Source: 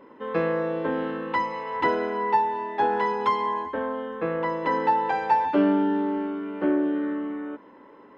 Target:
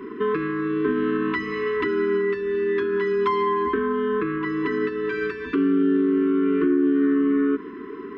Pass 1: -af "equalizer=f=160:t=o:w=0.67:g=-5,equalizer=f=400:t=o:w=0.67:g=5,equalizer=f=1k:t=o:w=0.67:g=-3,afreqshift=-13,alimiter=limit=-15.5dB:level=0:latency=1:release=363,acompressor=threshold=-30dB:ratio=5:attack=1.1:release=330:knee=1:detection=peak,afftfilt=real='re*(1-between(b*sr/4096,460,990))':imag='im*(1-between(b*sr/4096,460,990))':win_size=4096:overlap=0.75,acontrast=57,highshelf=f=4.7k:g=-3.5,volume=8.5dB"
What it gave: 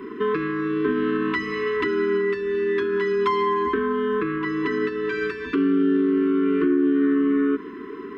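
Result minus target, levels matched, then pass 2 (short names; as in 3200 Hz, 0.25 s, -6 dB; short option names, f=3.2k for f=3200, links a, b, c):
4000 Hz band +3.0 dB
-af "equalizer=f=160:t=o:w=0.67:g=-5,equalizer=f=400:t=o:w=0.67:g=5,equalizer=f=1k:t=o:w=0.67:g=-3,afreqshift=-13,alimiter=limit=-15.5dB:level=0:latency=1:release=363,acompressor=threshold=-30dB:ratio=5:attack=1.1:release=330:knee=1:detection=peak,afftfilt=real='re*(1-between(b*sr/4096,460,990))':imag='im*(1-between(b*sr/4096,460,990))':win_size=4096:overlap=0.75,acontrast=57,highshelf=f=4.7k:g=-13,volume=8.5dB"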